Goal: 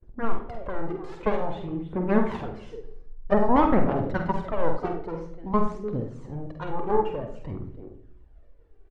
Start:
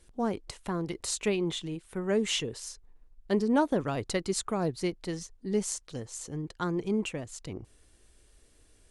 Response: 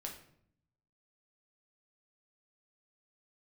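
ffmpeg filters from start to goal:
-filter_complex "[0:a]agate=range=-33dB:threshold=-54dB:ratio=3:detection=peak,asplit=2[link_01][link_02];[link_02]adelay=300,highpass=300,lowpass=3400,asoftclip=type=hard:threshold=-24dB,volume=-13dB[link_03];[link_01][link_03]amix=inputs=2:normalize=0,aeval=exprs='0.2*(cos(1*acos(clip(val(0)/0.2,-1,1)))-cos(1*PI/2))+0.0562*(cos(7*acos(clip(val(0)/0.2,-1,1)))-cos(7*PI/2))':channel_layout=same,aphaser=in_gain=1:out_gain=1:delay=2.7:decay=0.59:speed=0.51:type=triangular,lowpass=1100,asplit=2[link_04][link_05];[1:a]atrim=start_sample=2205,adelay=48[link_06];[link_05][link_06]afir=irnorm=-1:irlink=0,volume=-2dB[link_07];[link_04][link_07]amix=inputs=2:normalize=0,volume=5dB"

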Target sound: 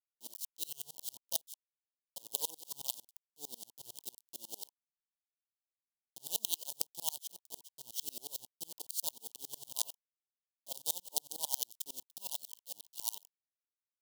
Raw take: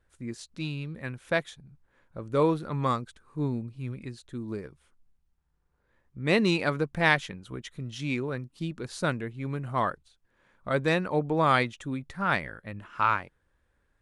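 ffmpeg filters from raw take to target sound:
ffmpeg -i in.wav -af "acrusher=bits=4:dc=4:mix=0:aa=0.000001,acompressor=threshold=-30dB:ratio=4,asuperstop=centerf=1700:order=20:qfactor=0.88,aderivative,aeval=exprs='val(0)*pow(10,-32*if(lt(mod(-11*n/s,1),2*abs(-11)/1000),1-mod(-11*n/s,1)/(2*abs(-11)/1000),(mod(-11*n/s,1)-2*abs(-11)/1000)/(1-2*abs(-11)/1000))/20)':channel_layout=same,volume=14dB" out.wav

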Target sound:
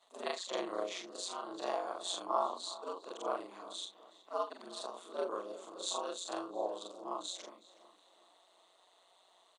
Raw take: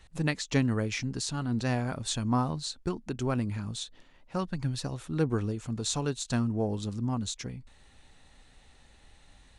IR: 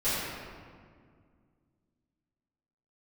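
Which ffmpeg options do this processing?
-filter_complex "[0:a]afftfilt=real='re':imag='-im':win_size=4096:overlap=0.75,aeval=exprs='val(0)*sin(2*PI*91*n/s)':channel_layout=same,highpass=frequency=420:width=0.5412,highpass=frequency=420:width=1.3066,equalizer=frequency=660:width_type=q:width=4:gain=8,equalizer=frequency=1100:width_type=q:width=4:gain=10,equalizer=frequency=1700:width_type=q:width=4:gain=-9,equalizer=frequency=2400:width_type=q:width=4:gain=-8,equalizer=frequency=3500:width_type=q:width=4:gain=6,equalizer=frequency=5400:width_type=q:width=4:gain=-7,lowpass=frequency=9300:width=0.5412,lowpass=frequency=9300:width=1.3066,asplit=2[link_01][link_02];[link_02]adelay=369,lowpass=frequency=3300:poles=1,volume=-17dB,asplit=2[link_03][link_04];[link_04]adelay=369,lowpass=frequency=3300:poles=1,volume=0.44,asplit=2[link_05][link_06];[link_06]adelay=369,lowpass=frequency=3300:poles=1,volume=0.44,asplit=2[link_07][link_08];[link_08]adelay=369,lowpass=frequency=3300:poles=1,volume=0.44[link_09];[link_03][link_05][link_07][link_09]amix=inputs=4:normalize=0[link_10];[link_01][link_10]amix=inputs=2:normalize=0,volume=1.5dB" -ar 32000 -c:a sbc -b:a 192k

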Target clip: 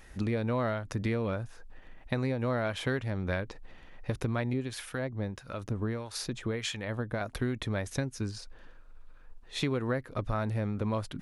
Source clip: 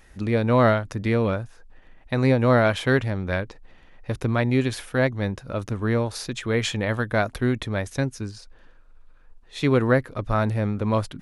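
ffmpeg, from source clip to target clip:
ffmpeg -i in.wav -filter_complex "[0:a]acompressor=threshold=-28dB:ratio=6,asettb=1/sr,asplit=3[link_01][link_02][link_03];[link_01]atrim=end=4.534[link_04];[link_02]atrim=start=4.53:end=7.21,asetpts=PTS-STARTPTS,afade=type=in:duration=0.004:curve=qsin,afade=type=out:start_time=2.676:duration=0.004:curve=qsin,acrossover=split=990[link_05][link_06];[link_05]aeval=exprs='val(0)*(1-0.7/2+0.7/2*cos(2*PI*1.6*n/s))':channel_layout=same[link_07];[link_06]aeval=exprs='val(0)*(1-0.7/2-0.7/2*cos(2*PI*1.6*n/s))':channel_layout=same[link_08];[link_07][link_08]amix=inputs=2:normalize=0[link_09];[link_03]atrim=start=7.206[link_10];[link_04][link_09]acrossfade=duration=0.004:curve1=hsin:curve2=qsin[link_11];[link_11][link_10]acrossfade=duration=0.004:curve1=qsin:curve2=hsin" out.wav

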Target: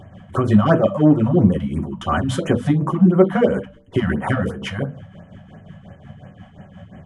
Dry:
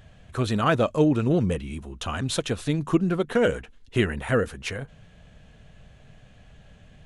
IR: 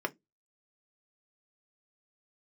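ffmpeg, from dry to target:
-filter_complex "[0:a]bass=frequency=250:gain=-1,treble=frequency=4000:gain=-5,bandreject=frequency=64.79:width_type=h:width=4,bandreject=frequency=129.58:width_type=h:width=4,bandreject=frequency=194.37:width_type=h:width=4,bandreject=frequency=259.16:width_type=h:width=4,bandreject=frequency=323.95:width_type=h:width=4,bandreject=frequency=388.74:width_type=h:width=4,bandreject=frequency=453.53:width_type=h:width=4,bandreject=frequency=518.32:width_type=h:width=4,bandreject=frequency=583.11:width_type=h:width=4,bandreject=frequency=647.9:width_type=h:width=4,asplit=2[link_01][link_02];[link_02]acompressor=threshold=-28dB:ratio=6,volume=0dB[link_03];[link_01][link_03]amix=inputs=2:normalize=0,asoftclip=type=tanh:threshold=-13.5dB,tremolo=f=5.6:d=0.62[link_04];[1:a]atrim=start_sample=2205,asetrate=25137,aresample=44100[link_05];[link_04][link_05]afir=irnorm=-1:irlink=0,afftfilt=real='re*(1-between(b*sr/1024,330*pow(4600/330,0.5+0.5*sin(2*PI*2.9*pts/sr))/1.41,330*pow(4600/330,0.5+0.5*sin(2*PI*2.9*pts/sr))*1.41))':imag='im*(1-between(b*sr/1024,330*pow(4600/330,0.5+0.5*sin(2*PI*2.9*pts/sr))/1.41,330*pow(4600/330,0.5+0.5*sin(2*PI*2.9*pts/sr))*1.41))':win_size=1024:overlap=0.75,volume=-1dB"

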